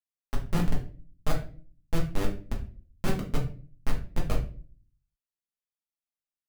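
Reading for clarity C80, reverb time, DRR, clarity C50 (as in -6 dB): 14.5 dB, 0.40 s, -2.5 dB, 9.0 dB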